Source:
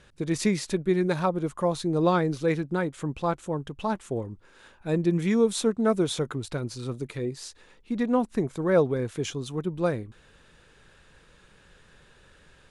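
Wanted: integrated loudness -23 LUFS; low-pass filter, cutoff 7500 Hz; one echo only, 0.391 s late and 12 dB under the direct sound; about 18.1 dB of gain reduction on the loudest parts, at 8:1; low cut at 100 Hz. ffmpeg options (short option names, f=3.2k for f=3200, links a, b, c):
-af "highpass=100,lowpass=7.5k,acompressor=threshold=-37dB:ratio=8,aecho=1:1:391:0.251,volume=18.5dB"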